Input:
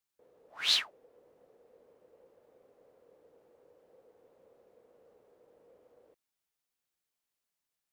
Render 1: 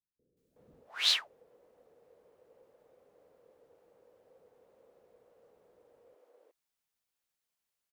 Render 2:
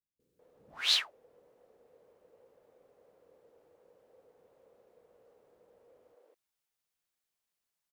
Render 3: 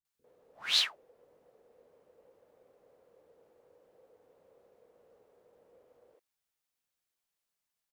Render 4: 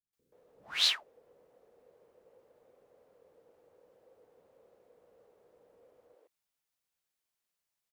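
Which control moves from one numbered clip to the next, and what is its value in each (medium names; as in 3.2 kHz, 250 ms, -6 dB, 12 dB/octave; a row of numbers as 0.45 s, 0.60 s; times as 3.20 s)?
bands offset in time, time: 370 ms, 200 ms, 50 ms, 130 ms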